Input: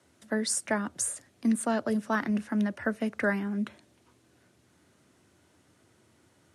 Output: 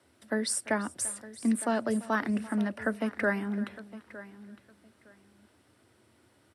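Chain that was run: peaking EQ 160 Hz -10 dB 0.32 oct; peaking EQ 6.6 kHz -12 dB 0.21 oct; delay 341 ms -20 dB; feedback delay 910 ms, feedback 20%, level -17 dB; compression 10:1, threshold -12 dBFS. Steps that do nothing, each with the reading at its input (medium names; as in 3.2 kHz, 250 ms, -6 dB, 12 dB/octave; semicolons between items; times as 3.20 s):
compression, threshold -12 dBFS: peak at its input -15.5 dBFS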